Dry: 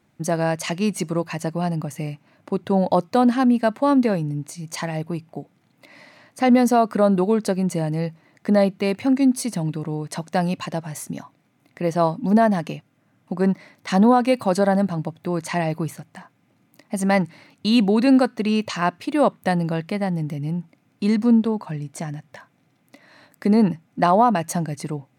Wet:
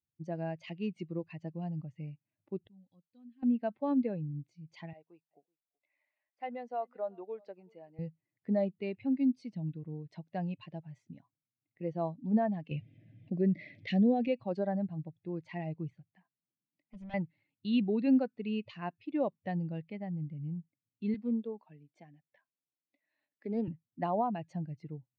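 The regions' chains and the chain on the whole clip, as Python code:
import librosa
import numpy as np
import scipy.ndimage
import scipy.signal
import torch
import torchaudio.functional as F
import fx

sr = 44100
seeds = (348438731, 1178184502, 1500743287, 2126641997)

y = fx.chain(x, sr, fx.highpass(hz=49.0, slope=12),
    fx.tone_stack(knobs='6-0-2'),
    fx.comb(ms=3.9, depth=0.43), at=(2.67, 3.43))
y = fx.chain(y, sr, fx.highpass(hz=770.0, slope=12),
    fx.tilt_eq(slope=-3.0),
    fx.echo_single(ms=377, db=-19.0), at=(4.93, 7.99))
y = fx.chain(y, sr, fx.band_shelf(hz=1100.0, db=-14.5, octaves=1.0),
    fx.env_flatten(amount_pct=50), at=(12.71, 14.28))
y = fx.chain(y, sr, fx.highpass(hz=140.0, slope=24),
    fx.overload_stage(gain_db=26.0), at=(16.11, 17.14))
y = fx.chain(y, sr, fx.highpass(hz=260.0, slope=12),
    fx.doppler_dist(depth_ms=0.16), at=(21.14, 23.68))
y = fx.bin_expand(y, sr, power=1.5)
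y = scipy.signal.sosfilt(scipy.signal.butter(4, 3100.0, 'lowpass', fs=sr, output='sos'), y)
y = fx.peak_eq(y, sr, hz=1300.0, db=-12.5, octaves=1.1)
y = F.gain(torch.from_numpy(y), -9.0).numpy()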